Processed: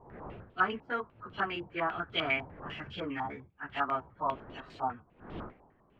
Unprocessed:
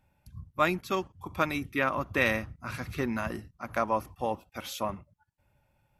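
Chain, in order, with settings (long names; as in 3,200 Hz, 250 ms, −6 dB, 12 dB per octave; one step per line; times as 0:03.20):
phase-vocoder pitch shift without resampling +3.5 semitones
wind on the microphone 460 Hz −48 dBFS
low-pass on a step sequencer 10 Hz 900–3,300 Hz
level −5 dB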